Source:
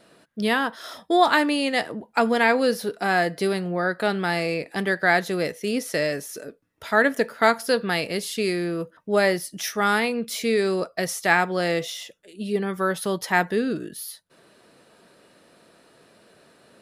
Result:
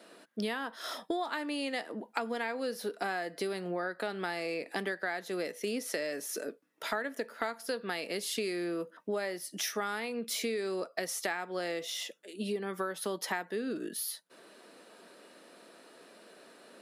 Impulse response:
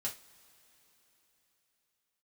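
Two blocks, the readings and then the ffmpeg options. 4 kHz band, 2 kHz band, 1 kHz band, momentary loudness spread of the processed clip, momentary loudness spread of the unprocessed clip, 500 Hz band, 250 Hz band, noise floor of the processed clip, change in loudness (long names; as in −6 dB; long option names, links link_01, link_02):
−9.0 dB, −13.5 dB, −14.0 dB, 21 LU, 12 LU, −11.5 dB, −12.0 dB, −60 dBFS, −12.5 dB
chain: -af "highpass=frequency=220:width=0.5412,highpass=frequency=220:width=1.3066,acompressor=threshold=-31dB:ratio=12"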